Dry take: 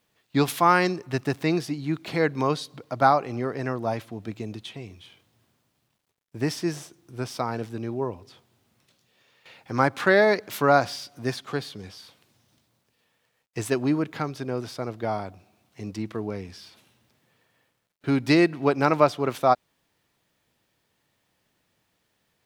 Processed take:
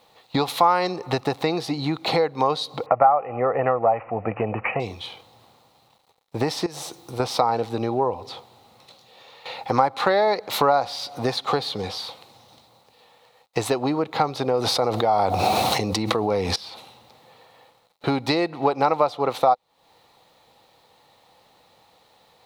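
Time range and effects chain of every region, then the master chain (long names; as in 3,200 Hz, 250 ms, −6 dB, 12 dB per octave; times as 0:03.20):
0:02.86–0:04.80: parametric band 950 Hz +4 dB 3 octaves + comb filter 1.6 ms, depth 38% + bad sample-rate conversion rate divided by 8×, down none, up filtered
0:06.66–0:07.20: high-shelf EQ 4,900 Hz +9 dB + downward compressor 16 to 1, threshold −38 dBFS
0:14.54–0:16.56: parametric band 10,000 Hz +5 dB 1.7 octaves + notch filter 7,500 Hz, Q 25 + envelope flattener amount 100%
whole clip: thirty-one-band graphic EQ 500 Hz +10 dB, 800 Hz +11 dB, 1,600 Hz −10 dB, 4,000 Hz +12 dB; downward compressor 6 to 1, threshold −30 dBFS; parametric band 1,200 Hz +9.5 dB 1.8 octaves; level +7.5 dB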